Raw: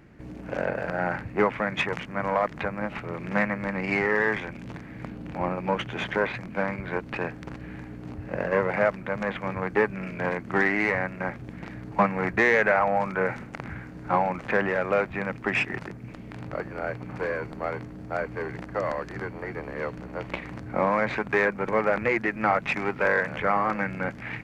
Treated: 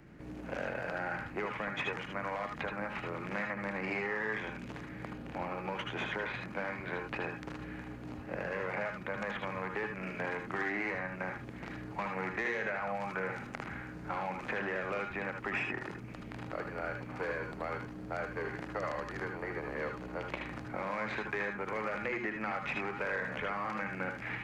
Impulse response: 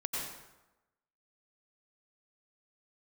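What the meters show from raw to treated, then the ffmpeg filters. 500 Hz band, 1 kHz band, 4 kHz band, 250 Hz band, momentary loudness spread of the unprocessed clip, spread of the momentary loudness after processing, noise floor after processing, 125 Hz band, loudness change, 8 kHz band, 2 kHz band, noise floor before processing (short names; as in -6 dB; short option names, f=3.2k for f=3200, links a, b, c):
-11.5 dB, -10.0 dB, -6.5 dB, -10.0 dB, 14 LU, 7 LU, -46 dBFS, -9.5 dB, -10.5 dB, n/a, -9.0 dB, -41 dBFS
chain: -filter_complex "[0:a]acrossover=split=2000[a][b];[a]alimiter=limit=-19.5dB:level=0:latency=1[c];[c][b]amix=inputs=2:normalize=0,acrossover=split=280|1900[d][e][f];[d]acompressor=threshold=-45dB:ratio=4[g];[e]acompressor=threshold=-33dB:ratio=4[h];[f]acompressor=threshold=-40dB:ratio=4[i];[g][h][i]amix=inputs=3:normalize=0[j];[1:a]atrim=start_sample=2205,atrim=end_sample=4410,asetrate=52920,aresample=44100[k];[j][k]afir=irnorm=-1:irlink=0"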